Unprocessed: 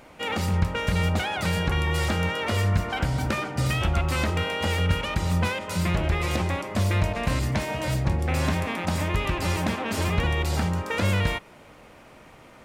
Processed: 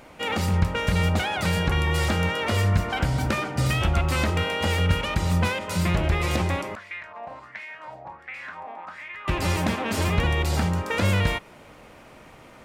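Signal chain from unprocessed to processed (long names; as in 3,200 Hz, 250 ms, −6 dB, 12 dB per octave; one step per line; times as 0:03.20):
0:06.75–0:09.28: LFO wah 1.4 Hz 740–2,200 Hz, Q 4.9
level +1.5 dB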